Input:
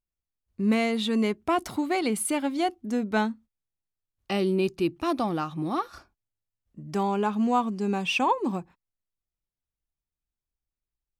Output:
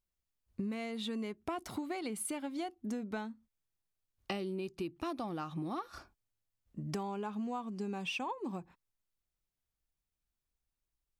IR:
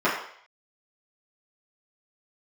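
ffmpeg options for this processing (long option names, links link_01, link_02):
-af "acompressor=threshold=-36dB:ratio=16,volume=1dB"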